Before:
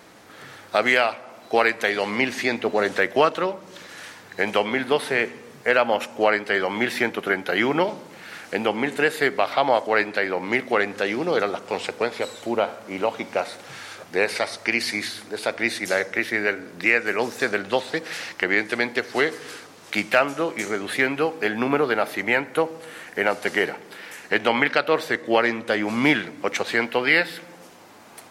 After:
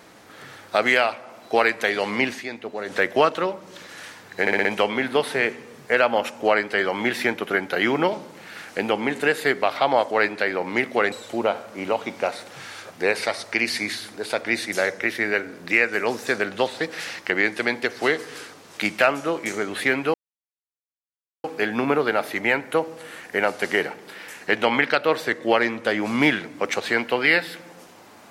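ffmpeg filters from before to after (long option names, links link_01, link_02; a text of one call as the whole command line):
ffmpeg -i in.wav -filter_complex "[0:a]asplit=9[link_01][link_02][link_03][link_04][link_05][link_06][link_07][link_08][link_09];[link_01]atrim=end=2.41,asetpts=PTS-STARTPTS,afade=type=out:start_time=2.25:duration=0.16:curve=qsin:silence=0.334965[link_10];[link_02]atrim=start=2.41:end=2.86,asetpts=PTS-STARTPTS,volume=-9.5dB[link_11];[link_03]atrim=start=2.86:end=4.472,asetpts=PTS-STARTPTS,afade=type=in:duration=0.16:curve=qsin:silence=0.334965[link_12];[link_04]atrim=start=4.408:end=4.472[link_13];[link_05]atrim=start=4.408:end=4.472[link_14];[link_06]atrim=start=4.408:end=4.472[link_15];[link_07]atrim=start=4.408:end=10.882[link_16];[link_08]atrim=start=12.248:end=21.27,asetpts=PTS-STARTPTS,afade=type=out:start_time=9.018:duration=0.004:curve=hsin,apad=pad_dur=1.3[link_17];[link_09]atrim=start=21.27,asetpts=PTS-STARTPTS,afade=type=in:duration=0.004:curve=hsin[link_18];[link_10][link_11][link_12]concat=n=3:v=0:a=1[link_19];[link_19][link_13]acrossfade=duration=0.004:curve1=hsin:curve2=hsin[link_20];[link_20][link_14]acrossfade=duration=0.004:curve1=hsin:curve2=hsin[link_21];[link_21][link_15]acrossfade=duration=0.004:curve1=hsin:curve2=hsin[link_22];[link_22][link_16]acrossfade=duration=0.004:curve1=hsin:curve2=hsin[link_23];[link_17][link_18]concat=n=2:v=0:a=1[link_24];[link_23][link_24]acrossfade=duration=0.004:curve1=hsin:curve2=hsin" out.wav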